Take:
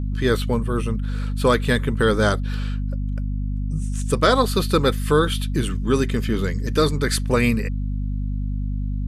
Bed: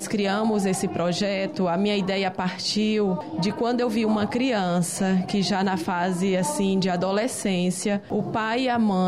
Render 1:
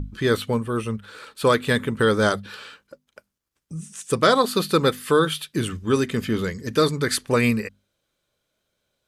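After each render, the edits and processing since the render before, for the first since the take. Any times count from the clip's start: hum notches 50/100/150/200/250 Hz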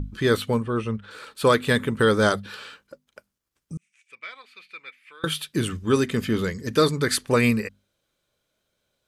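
0.62–1.11 s: distance through air 100 m; 3.77–5.24 s: band-pass filter 2.3 kHz, Q 13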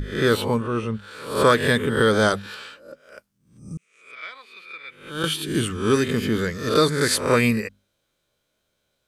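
reverse spectral sustain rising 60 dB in 0.54 s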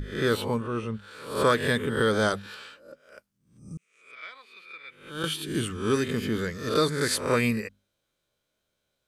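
trim -5.5 dB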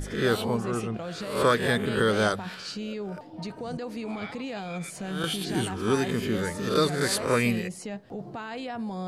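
add bed -12 dB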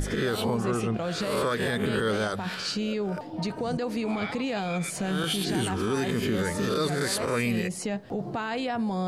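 in parallel at +1.5 dB: compression, threshold -34 dBFS, peak gain reduction 16 dB; on the sum: peak limiter -18 dBFS, peak gain reduction 9.5 dB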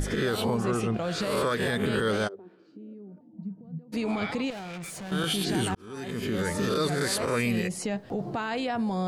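2.27–3.92 s: band-pass filter 410 Hz -> 150 Hz, Q 8.7; 4.50–5.12 s: valve stage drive 36 dB, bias 0.6; 5.75–6.52 s: fade in

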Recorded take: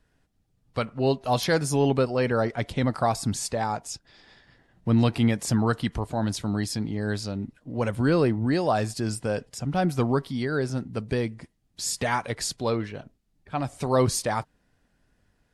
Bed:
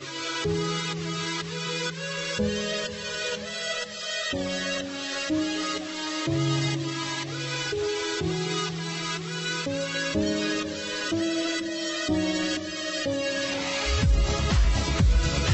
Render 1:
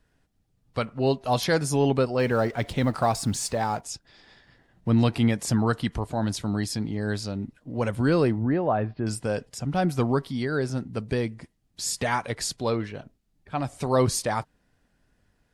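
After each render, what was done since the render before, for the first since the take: 2.19–3.81 s: companding laws mixed up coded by mu; 8.42–9.07 s: Gaussian low-pass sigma 3.8 samples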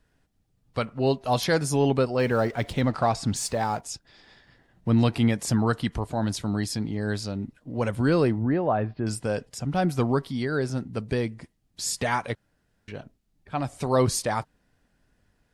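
2.81–3.36 s: low-pass 6 kHz; 12.35–12.88 s: room tone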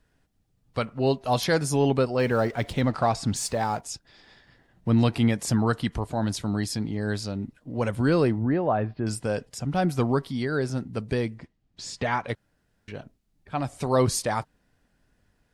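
11.38–12.29 s: distance through air 120 m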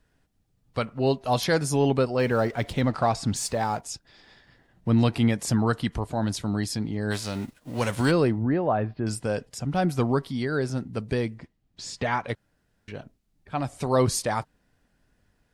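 7.10–8.10 s: formants flattened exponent 0.6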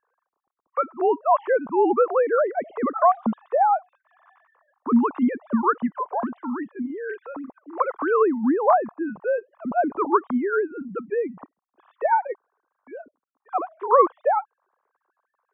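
formants replaced by sine waves; resonant low-pass 1.1 kHz, resonance Q 4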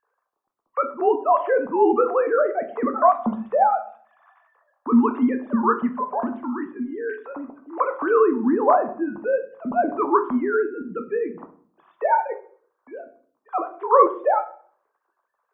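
simulated room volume 58 m³, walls mixed, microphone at 0.33 m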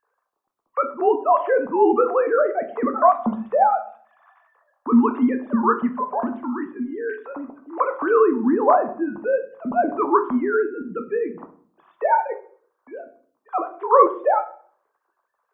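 trim +1 dB

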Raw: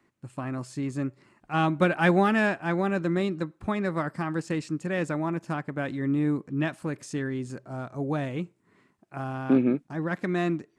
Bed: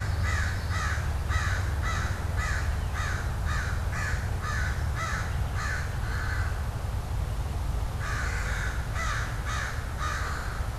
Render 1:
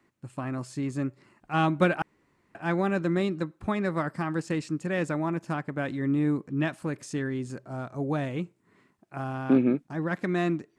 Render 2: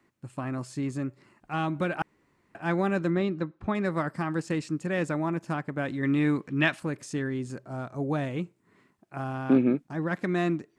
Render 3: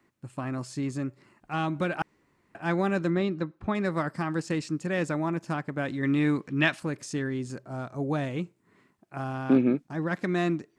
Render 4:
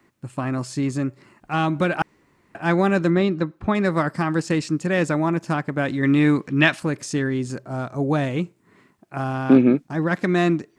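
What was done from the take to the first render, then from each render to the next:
2.02–2.55 s: room tone
0.89–1.95 s: compression 2:1, threshold -28 dBFS; 3.10–3.75 s: distance through air 130 m; 6.03–6.80 s: peaking EQ 2.7 kHz +11 dB 2.5 oct
dynamic bell 5.2 kHz, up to +4 dB, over -57 dBFS, Q 1.2
trim +7.5 dB; peak limiter -3 dBFS, peak gain reduction 1 dB

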